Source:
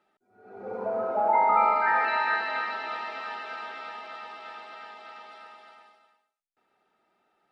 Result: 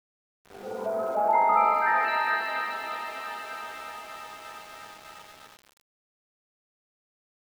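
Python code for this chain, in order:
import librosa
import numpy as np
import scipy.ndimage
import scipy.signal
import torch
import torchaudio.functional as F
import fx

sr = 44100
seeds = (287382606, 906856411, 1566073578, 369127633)

y = np.where(np.abs(x) >= 10.0 ** (-44.0 / 20.0), x, 0.0)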